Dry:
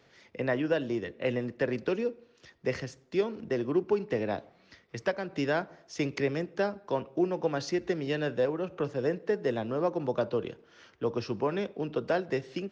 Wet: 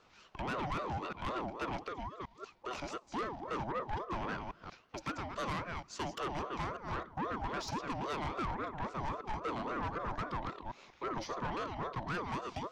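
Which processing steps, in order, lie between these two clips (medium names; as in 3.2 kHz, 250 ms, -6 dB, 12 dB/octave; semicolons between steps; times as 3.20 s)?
chunks repeated in reverse 188 ms, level -8 dB; 1.83–2.71 s: compression 6:1, threshold -34 dBFS, peak gain reduction 10 dB; saturation -30.5 dBFS, distortion -8 dB; ring modulator with a swept carrier 660 Hz, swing 35%, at 3.7 Hz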